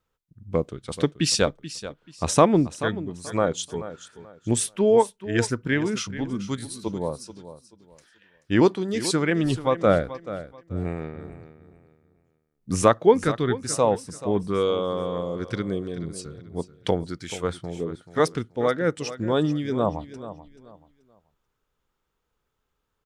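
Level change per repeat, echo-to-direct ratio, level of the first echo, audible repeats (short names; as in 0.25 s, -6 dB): -11.5 dB, -13.5 dB, -14.0 dB, 2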